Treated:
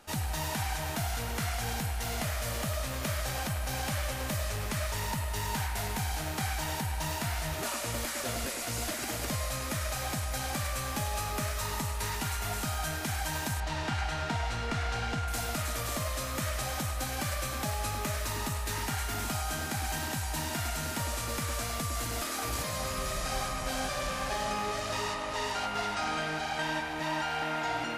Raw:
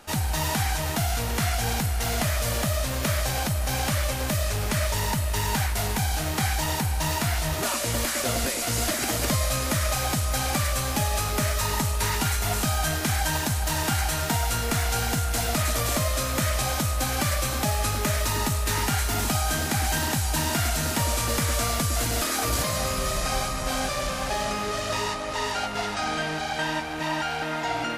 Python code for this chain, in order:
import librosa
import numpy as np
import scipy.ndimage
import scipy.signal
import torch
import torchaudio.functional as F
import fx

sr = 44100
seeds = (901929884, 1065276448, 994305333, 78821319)

y = fx.lowpass(x, sr, hz=4400.0, slope=12, at=(13.6, 15.28))
y = fx.rider(y, sr, range_db=10, speed_s=0.5)
y = fx.echo_wet_bandpass(y, sr, ms=102, feedback_pct=72, hz=1500.0, wet_db=-6.5)
y = y * 10.0 ** (-8.0 / 20.0)